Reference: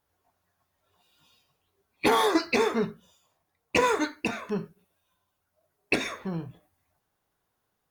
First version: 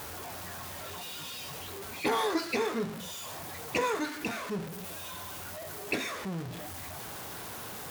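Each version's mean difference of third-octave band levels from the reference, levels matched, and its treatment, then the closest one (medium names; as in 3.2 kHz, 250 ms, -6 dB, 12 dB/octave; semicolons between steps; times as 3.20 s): 8.5 dB: jump at every zero crossing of -27 dBFS; high-pass 72 Hz; trim -8 dB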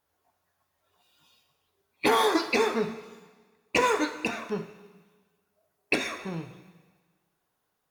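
4.0 dB: bass shelf 180 Hz -6.5 dB; plate-style reverb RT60 1.4 s, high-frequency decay 1×, pre-delay 0 ms, DRR 9.5 dB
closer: second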